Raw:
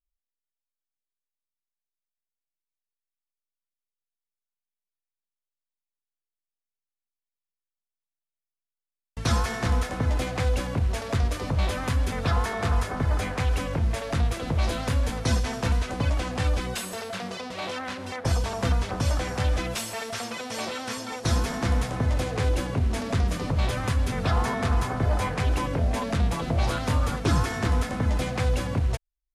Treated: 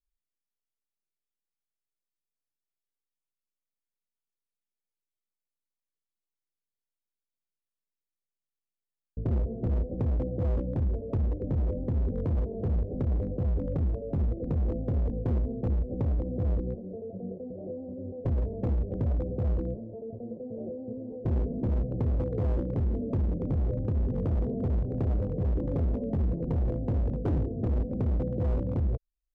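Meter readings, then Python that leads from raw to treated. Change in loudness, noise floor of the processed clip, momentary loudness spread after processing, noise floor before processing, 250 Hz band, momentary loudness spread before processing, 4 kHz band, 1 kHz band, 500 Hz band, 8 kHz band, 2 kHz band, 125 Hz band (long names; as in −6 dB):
−3.5 dB, below −85 dBFS, 9 LU, below −85 dBFS, −1.5 dB, 6 LU, below −30 dB, −17.0 dB, −3.5 dB, below −35 dB, below −25 dB, −2.5 dB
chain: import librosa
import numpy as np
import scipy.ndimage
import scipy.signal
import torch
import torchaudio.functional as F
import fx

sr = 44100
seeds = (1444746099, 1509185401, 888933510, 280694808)

y = scipy.signal.sosfilt(scipy.signal.butter(8, 550.0, 'lowpass', fs=sr, output='sos'), x)
y = np.clip(y, -10.0 ** (-23.5 / 20.0), 10.0 ** (-23.5 / 20.0))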